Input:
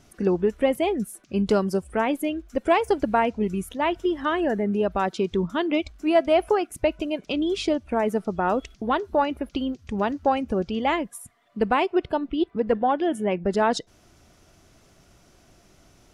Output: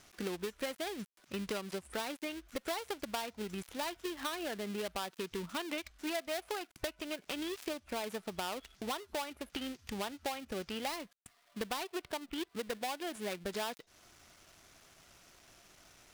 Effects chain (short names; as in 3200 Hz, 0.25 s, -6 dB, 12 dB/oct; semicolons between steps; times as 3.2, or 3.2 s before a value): switching dead time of 0.19 ms; tilt shelf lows -7 dB, about 720 Hz; compressor 4:1, threshold -32 dBFS, peak gain reduction 15.5 dB; gain -4.5 dB